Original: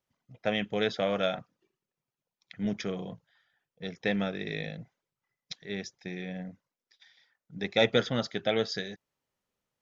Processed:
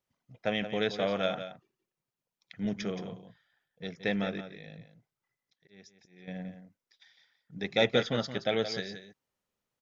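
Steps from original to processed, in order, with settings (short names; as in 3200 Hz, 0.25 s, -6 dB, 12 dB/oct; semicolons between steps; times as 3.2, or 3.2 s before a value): 4.37–6.28 auto swell 0.728 s; echo 0.173 s -10.5 dB; gain -1.5 dB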